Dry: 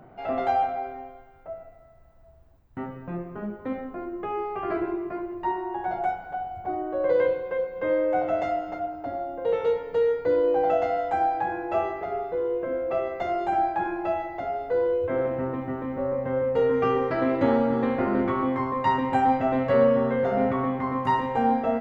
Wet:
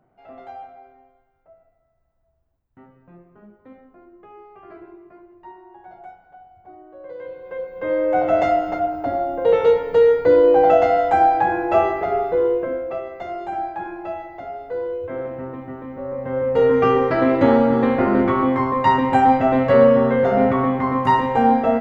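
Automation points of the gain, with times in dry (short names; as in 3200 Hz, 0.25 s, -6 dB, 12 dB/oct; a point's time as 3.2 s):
7.19 s -14 dB
7.52 s -3 dB
8.4 s +9 dB
12.46 s +9 dB
13.02 s -2.5 dB
16.02 s -2.5 dB
16.65 s +7 dB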